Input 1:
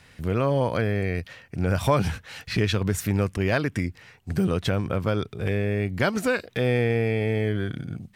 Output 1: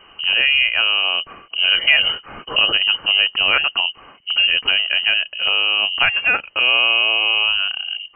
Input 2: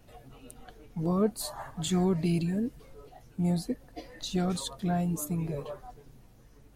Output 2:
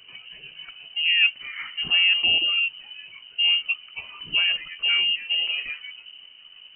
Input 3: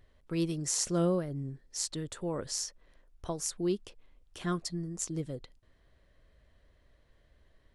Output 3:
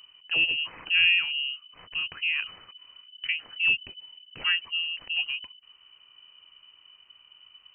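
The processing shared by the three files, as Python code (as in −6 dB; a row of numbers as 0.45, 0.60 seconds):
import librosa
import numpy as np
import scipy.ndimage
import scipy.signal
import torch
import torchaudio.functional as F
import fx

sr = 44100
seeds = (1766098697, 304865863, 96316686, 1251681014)

y = fx.freq_invert(x, sr, carrier_hz=3000)
y = y * 10.0 ** (6.5 / 20.0)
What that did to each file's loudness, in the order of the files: +10.5, +10.5, +8.5 LU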